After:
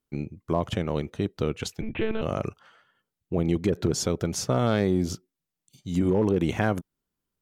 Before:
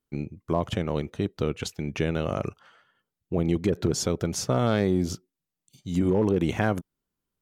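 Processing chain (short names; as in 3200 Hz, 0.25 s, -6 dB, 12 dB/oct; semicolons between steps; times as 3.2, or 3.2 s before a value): 1.81–2.22 monotone LPC vocoder at 8 kHz 220 Hz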